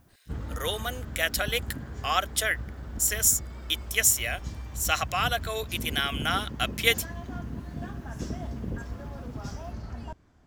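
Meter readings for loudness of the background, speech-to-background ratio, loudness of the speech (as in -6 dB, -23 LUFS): -38.0 LUFS, 11.5 dB, -26.5 LUFS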